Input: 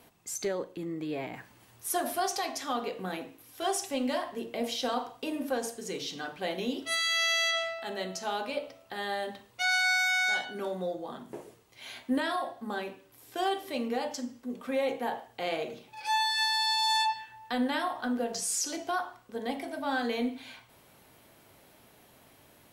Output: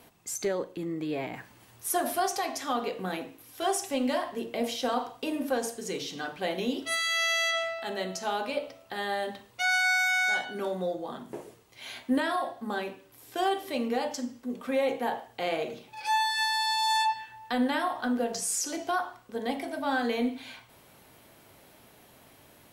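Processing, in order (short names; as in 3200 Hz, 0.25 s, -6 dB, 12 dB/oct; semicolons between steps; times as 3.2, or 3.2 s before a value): dynamic EQ 4200 Hz, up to -5 dB, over -41 dBFS, Q 1.1; gain +2.5 dB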